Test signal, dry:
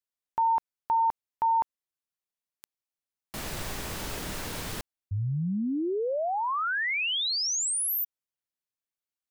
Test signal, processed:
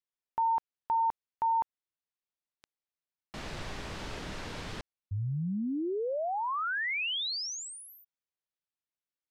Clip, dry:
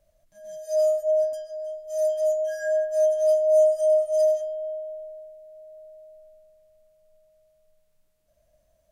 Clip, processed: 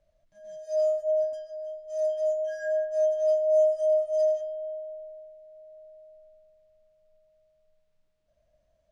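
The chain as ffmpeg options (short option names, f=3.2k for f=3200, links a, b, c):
-af "lowpass=4.8k,volume=-3.5dB"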